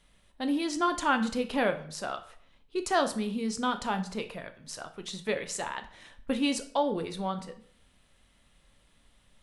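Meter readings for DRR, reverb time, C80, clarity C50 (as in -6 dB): 7.5 dB, 0.55 s, 17.0 dB, 13.5 dB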